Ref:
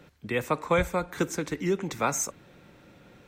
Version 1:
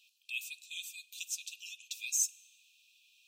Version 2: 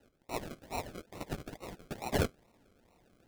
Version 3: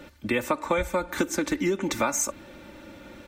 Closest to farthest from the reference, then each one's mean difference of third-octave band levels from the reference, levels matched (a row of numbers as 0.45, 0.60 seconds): 3, 2, 1; 4.5, 7.5, 22.5 decibels